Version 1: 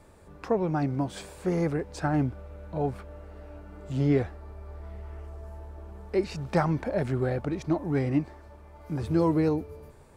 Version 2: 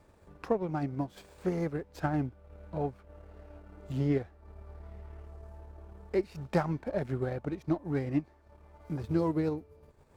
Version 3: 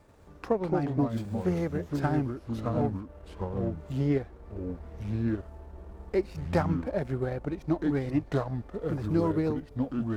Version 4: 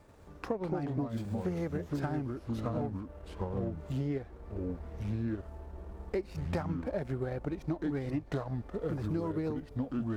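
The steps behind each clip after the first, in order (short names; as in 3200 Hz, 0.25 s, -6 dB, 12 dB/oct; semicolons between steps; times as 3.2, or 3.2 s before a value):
transient shaper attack +4 dB, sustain -8 dB; running maximum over 3 samples; gain -6 dB
echoes that change speed 87 ms, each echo -4 st, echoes 2; gain +2 dB
compressor, threshold -30 dBFS, peak gain reduction 10 dB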